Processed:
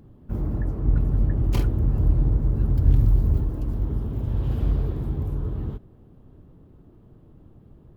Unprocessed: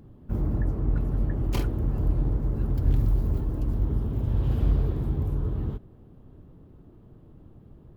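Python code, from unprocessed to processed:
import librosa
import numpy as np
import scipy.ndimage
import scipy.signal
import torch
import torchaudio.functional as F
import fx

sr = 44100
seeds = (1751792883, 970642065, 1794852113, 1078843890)

y = fx.peak_eq(x, sr, hz=76.0, db=6.0, octaves=2.7, at=(0.84, 3.48))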